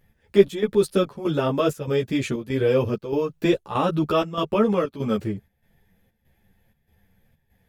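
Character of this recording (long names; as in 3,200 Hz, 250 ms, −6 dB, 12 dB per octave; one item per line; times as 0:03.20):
chopped level 1.6 Hz, depth 65%, duty 75%
a shimmering, thickened sound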